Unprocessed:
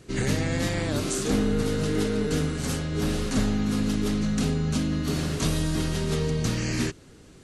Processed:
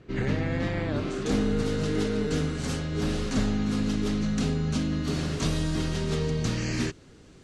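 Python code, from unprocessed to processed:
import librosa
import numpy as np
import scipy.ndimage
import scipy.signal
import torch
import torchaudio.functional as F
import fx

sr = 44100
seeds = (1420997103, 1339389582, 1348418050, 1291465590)

y = fx.lowpass(x, sr, hz=fx.steps((0.0, 2700.0), (1.26, 7200.0)), slope=12)
y = F.gain(torch.from_numpy(y), -1.5).numpy()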